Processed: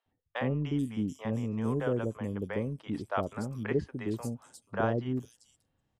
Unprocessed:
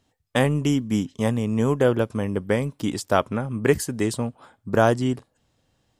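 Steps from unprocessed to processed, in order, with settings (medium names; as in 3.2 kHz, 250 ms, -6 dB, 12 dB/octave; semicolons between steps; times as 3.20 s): treble shelf 3.4 kHz -10 dB; three bands offset in time mids, lows, highs 60/430 ms, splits 560/4600 Hz; trim -8.5 dB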